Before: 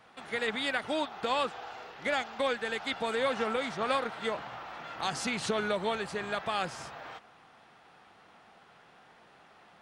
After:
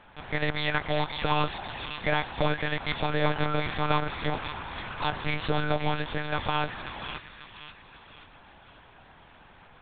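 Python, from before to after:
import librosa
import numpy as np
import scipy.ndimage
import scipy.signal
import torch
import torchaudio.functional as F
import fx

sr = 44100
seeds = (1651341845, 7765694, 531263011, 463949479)

p1 = x + fx.echo_wet_highpass(x, sr, ms=536, feedback_pct=45, hz=2300.0, wet_db=-4, dry=0)
p2 = fx.lpc_monotone(p1, sr, seeds[0], pitch_hz=150.0, order=8)
y = p2 * 10.0 ** (4.5 / 20.0)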